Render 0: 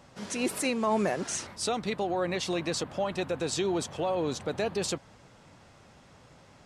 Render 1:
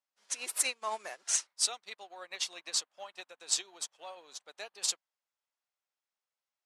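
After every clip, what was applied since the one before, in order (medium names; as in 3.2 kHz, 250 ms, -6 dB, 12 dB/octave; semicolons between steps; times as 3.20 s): high-pass 780 Hz 12 dB/octave; treble shelf 2.4 kHz +8 dB; upward expansion 2.5:1, over -50 dBFS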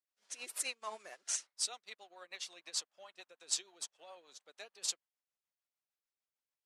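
rotary cabinet horn 6.7 Hz; trim -4 dB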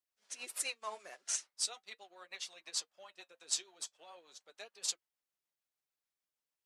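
flange 0.41 Hz, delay 4 ms, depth 3.5 ms, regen -62%; trim +4.5 dB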